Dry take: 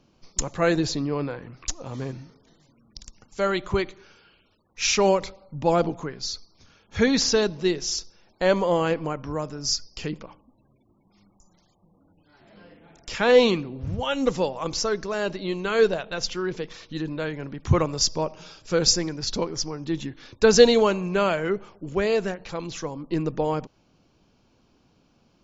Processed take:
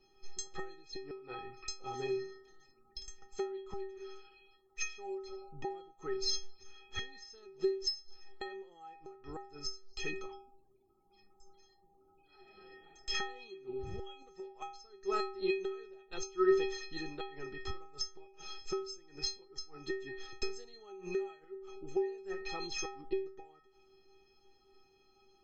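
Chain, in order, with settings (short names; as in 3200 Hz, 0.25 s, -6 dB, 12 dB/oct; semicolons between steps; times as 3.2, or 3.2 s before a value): flipped gate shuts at -18 dBFS, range -27 dB; metallic resonator 380 Hz, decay 0.57 s, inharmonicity 0.03; gain +16.5 dB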